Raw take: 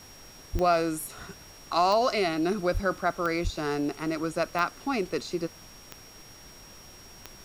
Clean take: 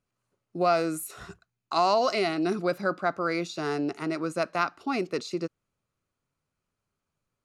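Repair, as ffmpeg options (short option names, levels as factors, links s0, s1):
-filter_complex "[0:a]adeclick=t=4,bandreject=f=5600:w=30,asplit=3[s0][s1][s2];[s0]afade=t=out:st=0.52:d=0.02[s3];[s1]highpass=f=140:w=0.5412,highpass=f=140:w=1.3066,afade=t=in:st=0.52:d=0.02,afade=t=out:st=0.64:d=0.02[s4];[s2]afade=t=in:st=0.64:d=0.02[s5];[s3][s4][s5]amix=inputs=3:normalize=0,asplit=3[s6][s7][s8];[s6]afade=t=out:st=2.73:d=0.02[s9];[s7]highpass=f=140:w=0.5412,highpass=f=140:w=1.3066,afade=t=in:st=2.73:d=0.02,afade=t=out:st=2.85:d=0.02[s10];[s8]afade=t=in:st=2.85:d=0.02[s11];[s9][s10][s11]amix=inputs=3:normalize=0,asplit=3[s12][s13][s14];[s12]afade=t=out:st=3.43:d=0.02[s15];[s13]highpass=f=140:w=0.5412,highpass=f=140:w=1.3066,afade=t=in:st=3.43:d=0.02,afade=t=out:st=3.55:d=0.02[s16];[s14]afade=t=in:st=3.55:d=0.02[s17];[s15][s16][s17]amix=inputs=3:normalize=0,afftdn=nr=30:nf=-49"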